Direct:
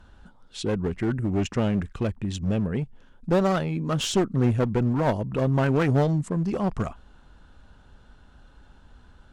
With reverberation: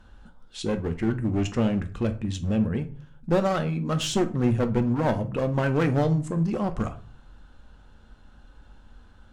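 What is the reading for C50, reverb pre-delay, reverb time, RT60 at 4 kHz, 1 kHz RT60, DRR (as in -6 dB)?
15.0 dB, 4 ms, 0.40 s, 0.30 s, 0.45 s, 7.0 dB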